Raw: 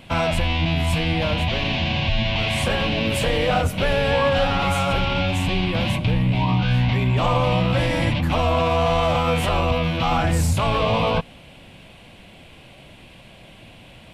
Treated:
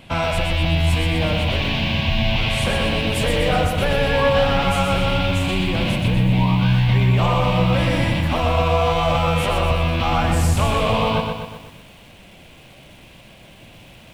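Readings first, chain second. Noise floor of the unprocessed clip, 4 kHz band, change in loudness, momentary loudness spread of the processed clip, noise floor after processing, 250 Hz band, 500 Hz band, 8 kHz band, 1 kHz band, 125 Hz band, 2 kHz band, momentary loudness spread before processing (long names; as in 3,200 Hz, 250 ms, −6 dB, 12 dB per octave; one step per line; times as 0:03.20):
−46 dBFS, +1.5 dB, +1.5 dB, 4 LU, −45 dBFS, +2.0 dB, +1.5 dB, +1.5 dB, +1.0 dB, +2.5 dB, +1.5 dB, 3 LU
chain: hum removal 247 Hz, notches 38
feedback echo at a low word length 123 ms, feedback 55%, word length 8 bits, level −5 dB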